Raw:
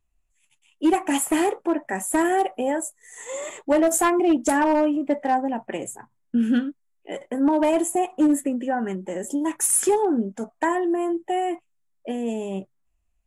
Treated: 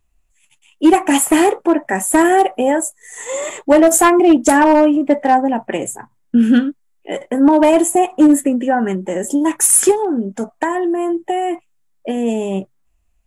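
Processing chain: 9.91–12.17 s: compression, threshold -24 dBFS, peak gain reduction 8 dB; trim +9 dB

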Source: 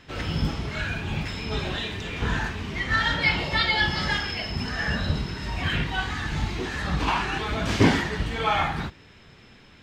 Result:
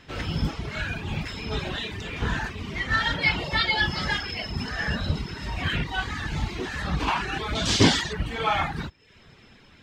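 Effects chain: 7.55–8.13 s: high-order bell 5.2 kHz +11 dB; reverb removal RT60 0.56 s

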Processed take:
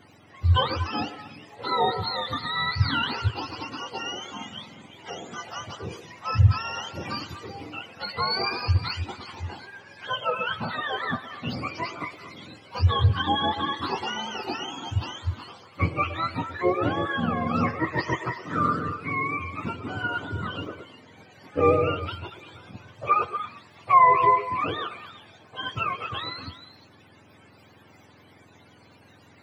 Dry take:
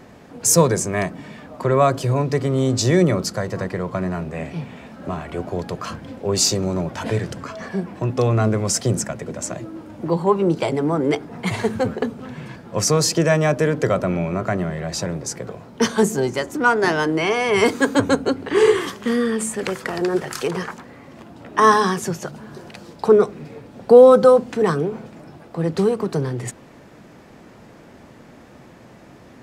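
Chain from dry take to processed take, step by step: spectrum inverted on a logarithmic axis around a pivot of 720 Hz; repeats whose band climbs or falls 118 ms, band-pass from 480 Hz, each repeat 1.4 oct, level -6.5 dB; trim -6 dB

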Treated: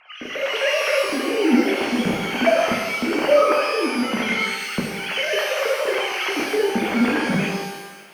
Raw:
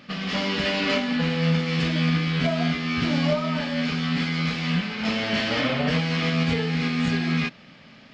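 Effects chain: formants replaced by sine waves; rotary cabinet horn 1.1 Hz; pitch-shifted reverb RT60 1.1 s, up +12 st, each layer -8 dB, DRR 0 dB; trim +1.5 dB

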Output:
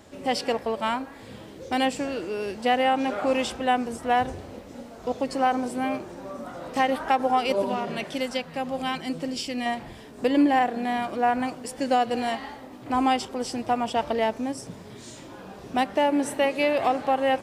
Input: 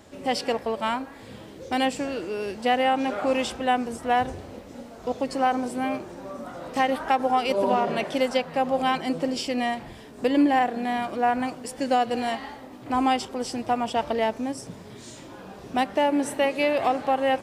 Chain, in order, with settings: 7.62–9.66 s: peaking EQ 690 Hz -7 dB 2.5 oct

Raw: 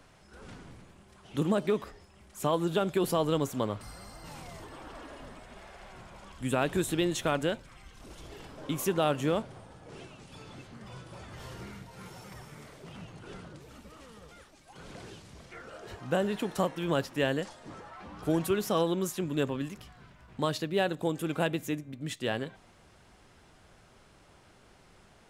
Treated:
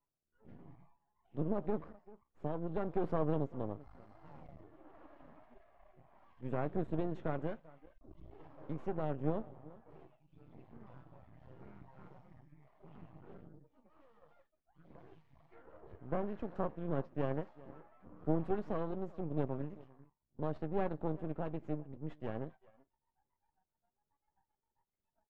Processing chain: rotary cabinet horn 0.9 Hz, later 7.5 Hz, at 21.35 s; doubling 13 ms -11.5 dB; echo from a far wall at 67 m, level -20 dB; spectral noise reduction 26 dB; half-wave rectifier; low-pass 1.1 kHz 12 dB/octave; trim -2.5 dB

